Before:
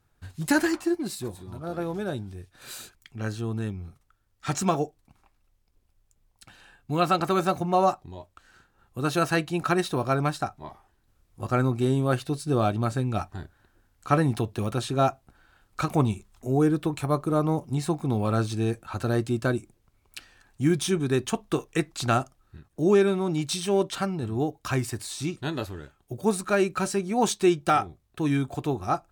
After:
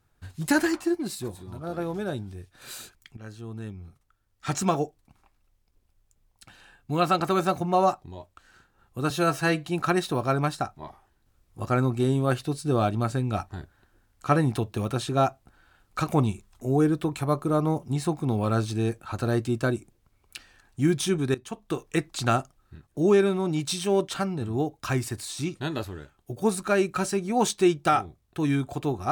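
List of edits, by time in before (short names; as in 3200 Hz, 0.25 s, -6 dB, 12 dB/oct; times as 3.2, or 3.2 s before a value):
3.17–4.55 fade in linear, from -13 dB
9.1–9.47 stretch 1.5×
21.16–21.77 fade in, from -18 dB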